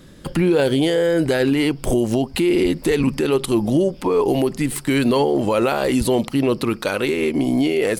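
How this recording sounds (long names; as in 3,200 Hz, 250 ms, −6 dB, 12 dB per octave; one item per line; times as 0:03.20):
background noise floor −40 dBFS
spectral slope −5.5 dB per octave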